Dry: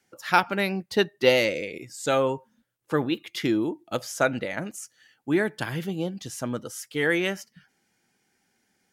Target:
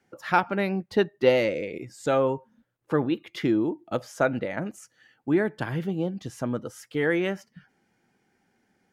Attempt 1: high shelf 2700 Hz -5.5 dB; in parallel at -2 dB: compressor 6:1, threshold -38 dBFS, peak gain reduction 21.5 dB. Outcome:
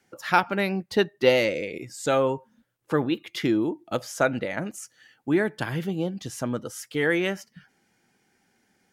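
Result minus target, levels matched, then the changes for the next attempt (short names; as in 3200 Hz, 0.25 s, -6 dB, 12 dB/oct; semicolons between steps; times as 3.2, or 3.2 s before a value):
4000 Hz band +4.5 dB
change: high shelf 2700 Hz -15 dB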